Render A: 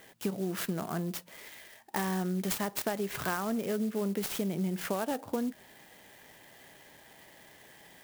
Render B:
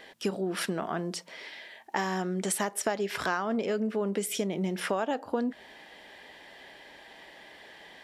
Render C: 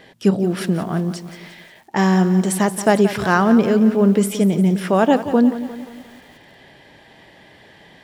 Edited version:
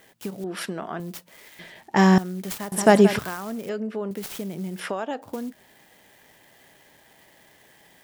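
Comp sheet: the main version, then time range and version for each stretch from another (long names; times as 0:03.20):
A
0:00.44–0:01.00: punch in from B
0:01.59–0:02.18: punch in from C
0:02.72–0:03.19: punch in from C
0:03.69–0:04.11: punch in from B
0:04.79–0:05.22: punch in from B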